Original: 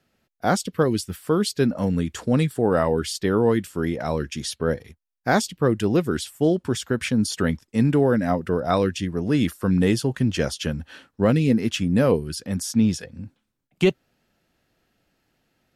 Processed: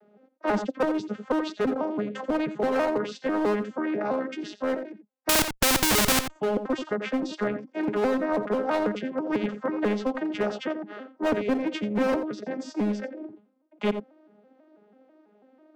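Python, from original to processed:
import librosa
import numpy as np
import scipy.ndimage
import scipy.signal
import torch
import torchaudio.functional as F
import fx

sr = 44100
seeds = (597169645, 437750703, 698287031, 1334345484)

p1 = fx.vocoder_arp(x, sr, chord='major triad', root=56, every_ms=164)
p2 = fx.bandpass_q(p1, sr, hz=560.0, q=1.3)
p3 = np.clip(p2, -10.0 ** (-24.0 / 20.0), 10.0 ** (-24.0 / 20.0))
p4 = p2 + (p3 * librosa.db_to_amplitude(-11.5))
p5 = fx.vibrato(p4, sr, rate_hz=12.0, depth_cents=12.0)
p6 = fx.schmitt(p5, sr, flips_db=-36.0, at=(5.29, 6.3))
p7 = p6 + fx.echo_single(p6, sr, ms=87, db=-15.5, dry=0)
p8 = fx.spectral_comp(p7, sr, ratio=2.0)
y = p8 * librosa.db_to_amplitude(6.0)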